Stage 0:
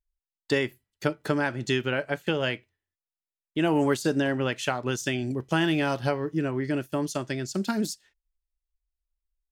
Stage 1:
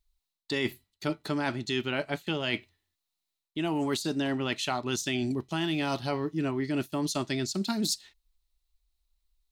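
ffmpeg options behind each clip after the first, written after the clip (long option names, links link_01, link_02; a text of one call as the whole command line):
ffmpeg -i in.wav -af "equalizer=frequency=125:width_type=o:width=0.33:gain=-5,equalizer=frequency=500:width_type=o:width=0.33:gain=-11,equalizer=frequency=1600:width_type=o:width=0.33:gain=-7,equalizer=frequency=4000:width_type=o:width=0.33:gain=10,areverse,acompressor=threshold=-35dB:ratio=10,areverse,volume=8.5dB" out.wav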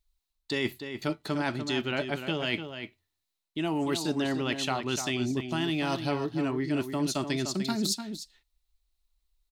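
ffmpeg -i in.wav -filter_complex "[0:a]asplit=2[link_01][link_02];[link_02]adelay=297.4,volume=-8dB,highshelf=frequency=4000:gain=-6.69[link_03];[link_01][link_03]amix=inputs=2:normalize=0" out.wav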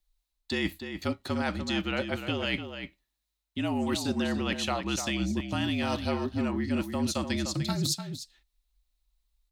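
ffmpeg -i in.wav -af "afreqshift=-50" out.wav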